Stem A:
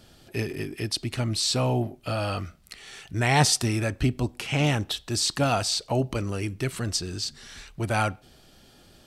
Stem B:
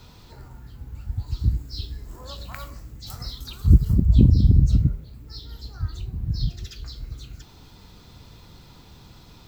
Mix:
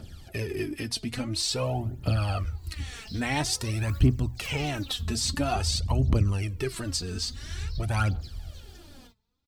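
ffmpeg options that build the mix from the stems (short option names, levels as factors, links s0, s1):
-filter_complex "[0:a]lowshelf=f=180:g=5.5,acompressor=threshold=0.0316:ratio=2,volume=0.891,asplit=2[s0][s1];[1:a]acompressor=threshold=0.0708:ratio=6,adelay=1350,volume=0.299[s2];[s1]apad=whole_len=477169[s3];[s2][s3]sidechaingate=range=0.0708:threshold=0.00112:ratio=16:detection=peak[s4];[s0][s4]amix=inputs=2:normalize=0,equalizer=f=79:w=5.3:g=11,bandreject=f=60:t=h:w=6,bandreject=f=120:t=h:w=6,aphaser=in_gain=1:out_gain=1:delay=4.7:decay=0.66:speed=0.49:type=triangular"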